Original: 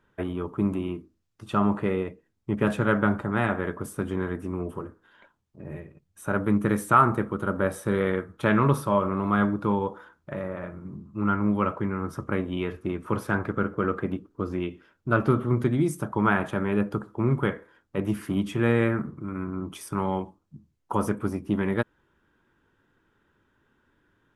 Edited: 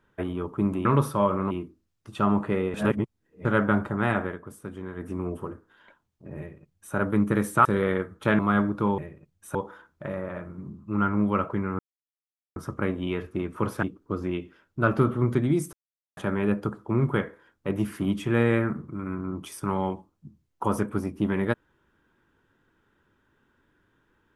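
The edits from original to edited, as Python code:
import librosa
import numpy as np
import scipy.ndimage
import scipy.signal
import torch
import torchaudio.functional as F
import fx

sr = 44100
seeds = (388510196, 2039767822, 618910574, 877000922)

y = fx.edit(x, sr, fx.reverse_span(start_s=2.08, length_s=0.71),
    fx.fade_down_up(start_s=3.57, length_s=0.85, db=-8.5, fade_s=0.13),
    fx.duplicate(start_s=5.72, length_s=0.57, to_s=9.82),
    fx.cut(start_s=6.99, length_s=0.84),
    fx.move(start_s=8.57, length_s=0.66, to_s=0.85),
    fx.insert_silence(at_s=12.06, length_s=0.77),
    fx.cut(start_s=13.33, length_s=0.79),
    fx.silence(start_s=16.02, length_s=0.44), tone=tone)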